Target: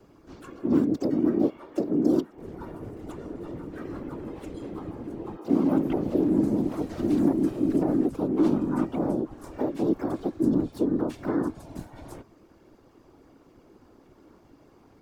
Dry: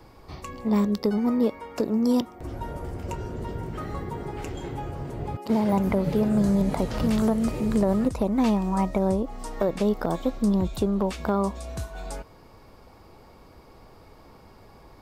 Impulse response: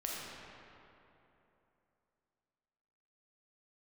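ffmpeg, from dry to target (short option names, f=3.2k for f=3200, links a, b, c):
-filter_complex "[0:a]asplit=3[a][b][c];[b]asetrate=55563,aresample=44100,atempo=0.793701,volume=-3dB[d];[c]asetrate=66075,aresample=44100,atempo=0.66742,volume=-7dB[e];[a][d][e]amix=inputs=3:normalize=0,afftfilt=real='hypot(re,im)*cos(2*PI*random(0))':imag='hypot(re,im)*sin(2*PI*random(1))':win_size=512:overlap=0.75,equalizer=f=310:t=o:w=0.98:g=14,volume=-6.5dB"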